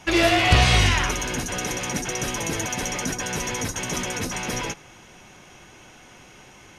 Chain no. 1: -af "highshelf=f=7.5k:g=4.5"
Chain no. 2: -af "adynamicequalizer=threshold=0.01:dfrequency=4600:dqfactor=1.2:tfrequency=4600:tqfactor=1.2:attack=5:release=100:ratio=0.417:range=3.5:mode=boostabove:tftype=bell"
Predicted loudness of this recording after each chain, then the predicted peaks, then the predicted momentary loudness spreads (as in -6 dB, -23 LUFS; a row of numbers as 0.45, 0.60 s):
-22.5, -20.5 LUFS; -4.5, -3.5 dBFS; 10, 10 LU